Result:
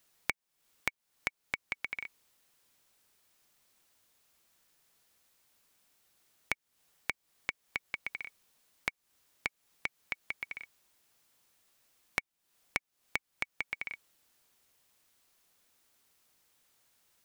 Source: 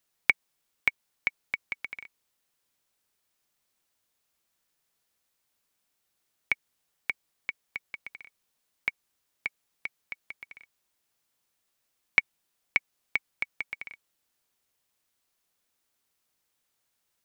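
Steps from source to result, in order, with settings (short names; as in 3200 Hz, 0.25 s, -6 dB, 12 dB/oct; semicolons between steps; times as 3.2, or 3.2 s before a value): compressor 6:1, threshold -39 dBFS, peak gain reduction 22 dB; gain +7 dB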